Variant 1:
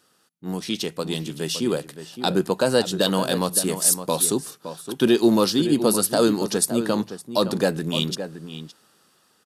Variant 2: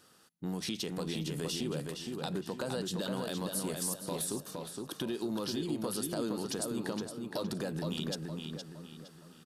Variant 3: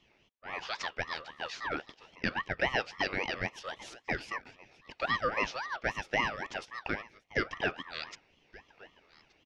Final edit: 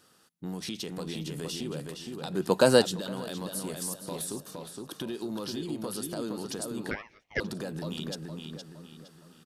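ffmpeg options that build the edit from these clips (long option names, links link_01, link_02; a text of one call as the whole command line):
ffmpeg -i take0.wav -i take1.wav -i take2.wav -filter_complex "[1:a]asplit=3[link_01][link_02][link_03];[link_01]atrim=end=2.57[link_04];[0:a]atrim=start=2.33:end=2.99[link_05];[link_02]atrim=start=2.75:end=6.912[link_06];[2:a]atrim=start=6.908:end=7.402[link_07];[link_03]atrim=start=7.398[link_08];[link_04][link_05]acrossfade=duration=0.24:curve1=tri:curve2=tri[link_09];[link_09][link_06]acrossfade=duration=0.24:curve1=tri:curve2=tri[link_10];[link_10][link_07]acrossfade=duration=0.004:curve1=hsin:curve2=hsin[link_11];[link_11][link_08]acrossfade=duration=0.004:curve1=hsin:curve2=hsin" out.wav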